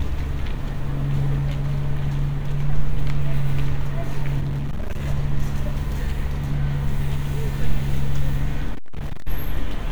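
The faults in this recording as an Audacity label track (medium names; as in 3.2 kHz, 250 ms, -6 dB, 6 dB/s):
4.400000	5.070000	clipped -21 dBFS
8.740000	9.280000	clipped -21.5 dBFS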